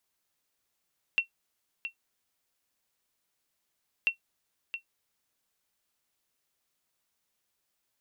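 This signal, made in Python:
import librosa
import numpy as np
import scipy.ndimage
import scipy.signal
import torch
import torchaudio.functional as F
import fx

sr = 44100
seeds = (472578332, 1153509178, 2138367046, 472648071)

y = fx.sonar_ping(sr, hz=2720.0, decay_s=0.11, every_s=2.89, pings=2, echo_s=0.67, echo_db=-10.5, level_db=-16.0)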